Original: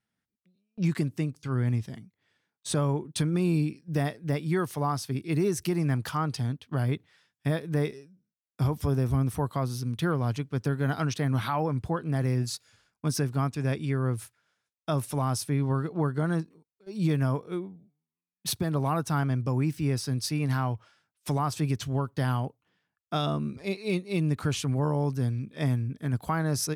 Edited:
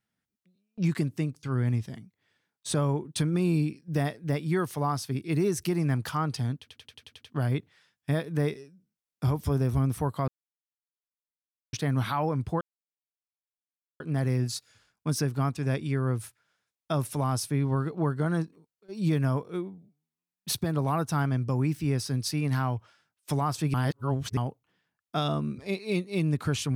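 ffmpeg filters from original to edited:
ffmpeg -i in.wav -filter_complex "[0:a]asplit=13[link_01][link_02][link_03][link_04][link_05][link_06][link_07][link_08][link_09][link_10][link_11][link_12][link_13];[link_01]atrim=end=6.682[link_14];[link_02]atrim=start=6.588:end=6.682[link_15];[link_03]atrim=start=6.588:end=6.682[link_16];[link_04]atrim=start=6.588:end=6.682[link_17];[link_05]atrim=start=6.588:end=6.682[link_18];[link_06]atrim=start=6.588:end=6.682[link_19];[link_07]atrim=start=6.588:end=6.682[link_20];[link_08]atrim=start=6.588:end=9.65,asetpts=PTS-STARTPTS,afade=type=out:start_time=3.058:duration=0.004:curve=hsin[link_21];[link_09]atrim=start=9.65:end=11.1,asetpts=PTS-STARTPTS,volume=0[link_22];[link_10]atrim=start=11.1:end=11.98,asetpts=PTS-STARTPTS,afade=type=in:duration=0.004:curve=hsin,afade=type=out:start_time=0.876:duration=0.004:curve=hsin,apad=pad_dur=1.39[link_23];[link_11]atrim=start=11.98:end=21.722,asetpts=PTS-STARTPTS,afade=type=in:duration=0.004:curve=hsin[link_24];[link_12]atrim=start=21.718:end=22.352,asetpts=PTS-STARTPTS,areverse[link_25];[link_13]atrim=start=22.348[link_26];[link_14][link_15]acrossfade=duration=0.004:curve1=hsin:curve2=hsin[link_27];[link_27][link_16]acrossfade=duration=0.004:curve1=hsin:curve2=hsin[link_28];[link_28][link_17]acrossfade=duration=0.004:curve1=hsin:curve2=hsin[link_29];[link_29][link_18]acrossfade=duration=0.004:curve1=hsin:curve2=hsin[link_30];[link_30][link_19]acrossfade=duration=0.004:curve1=hsin:curve2=hsin[link_31];[link_31][link_20]acrossfade=duration=0.004:curve1=hsin:curve2=hsin[link_32];[link_21][link_22][link_23][link_24]concat=n=4:v=0:a=1[link_33];[link_32][link_33]acrossfade=duration=0.004:curve1=hsin:curve2=hsin[link_34];[link_34][link_25]acrossfade=duration=0.004:curve1=hsin:curve2=hsin[link_35];[link_35][link_26]acrossfade=duration=0.004:curve1=hsin:curve2=hsin" out.wav

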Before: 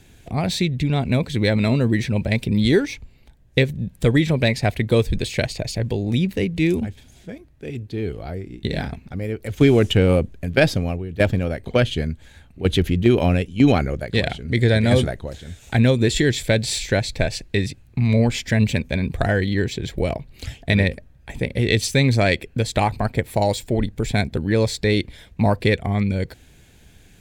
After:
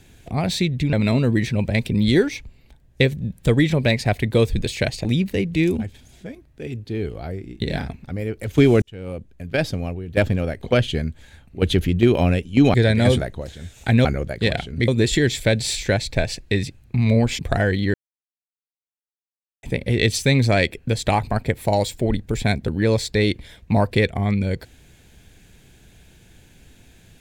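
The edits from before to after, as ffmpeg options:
ffmpeg -i in.wav -filter_complex "[0:a]asplit=10[link_01][link_02][link_03][link_04][link_05][link_06][link_07][link_08][link_09][link_10];[link_01]atrim=end=0.932[link_11];[link_02]atrim=start=1.498:end=5.622[link_12];[link_03]atrim=start=6.078:end=9.85,asetpts=PTS-STARTPTS,afade=type=out:start_time=3.768:duration=0.004:curve=hsin[link_13];[link_04]atrim=start=9.85:end=13.772,asetpts=PTS-STARTPTS,afade=type=in:duration=1.45[link_14];[link_05]atrim=start=14.598:end=15.912[link_15];[link_06]atrim=start=13.768:end=14.602[link_16];[link_07]atrim=start=15.908:end=18.422[link_17];[link_08]atrim=start=19.078:end=19.63,asetpts=PTS-STARTPTS,afade=type=out:start_time=0.548:duration=0.004:curve=hsin[link_18];[link_09]atrim=start=19.63:end=21.32,asetpts=PTS-STARTPTS,volume=0[link_19];[link_10]atrim=start=21.32,asetpts=PTS-STARTPTS,afade=type=in:duration=0.004:curve=hsin[link_20];[link_11][link_12]acrossfade=duration=0.004:curve1=hsin:curve2=hsin[link_21];[link_13][link_14]concat=n=2:v=0:a=1[link_22];[link_21][link_22]acrossfade=duration=0.004:curve1=hsin:curve2=hsin[link_23];[link_23][link_15]acrossfade=duration=0.004:curve1=hsin:curve2=hsin[link_24];[link_24][link_16]acrossfade=duration=0.004:curve1=hsin:curve2=hsin[link_25];[link_25][link_17]acrossfade=duration=0.004:curve1=hsin:curve2=hsin[link_26];[link_18][link_19][link_20]concat=n=3:v=0:a=1[link_27];[link_26][link_27]acrossfade=duration=0.004:curve1=hsin:curve2=hsin" out.wav

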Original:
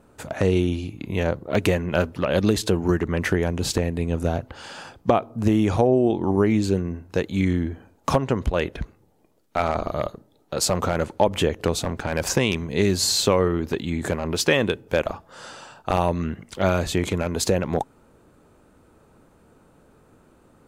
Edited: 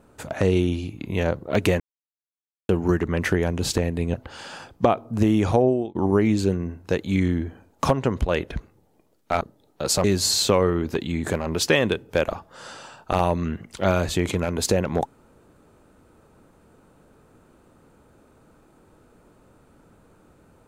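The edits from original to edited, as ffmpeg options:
ffmpeg -i in.wav -filter_complex "[0:a]asplit=7[link_01][link_02][link_03][link_04][link_05][link_06][link_07];[link_01]atrim=end=1.8,asetpts=PTS-STARTPTS,afade=type=out:start_time=1.796:duration=0.004:curve=hsin[link_08];[link_02]atrim=start=1.8:end=2.69,asetpts=PTS-STARTPTS,volume=0[link_09];[link_03]atrim=start=2.69:end=4.142,asetpts=PTS-STARTPTS,afade=type=in:duration=0.004:curve=hsin[link_10];[link_04]atrim=start=4.388:end=6.2,asetpts=PTS-STARTPTS,afade=type=out:start_time=1.512:duration=0.3[link_11];[link_05]atrim=start=6.2:end=9.662,asetpts=PTS-STARTPTS,afade=type=in:duration=0.004:curve=hsin[link_12];[link_06]atrim=start=10.128:end=10.762[link_13];[link_07]atrim=start=12.818[link_14];[link_08][link_09][link_10]concat=n=3:v=0:a=1[link_15];[link_11][link_12]concat=n=2:v=0:a=1[link_16];[link_15][link_16]acrossfade=duration=0.004:curve1=hsin:curve2=hsin[link_17];[link_17][link_13]acrossfade=duration=0.004:curve1=hsin:curve2=hsin[link_18];[link_18][link_14]acrossfade=duration=0.004:curve1=hsin:curve2=hsin" out.wav

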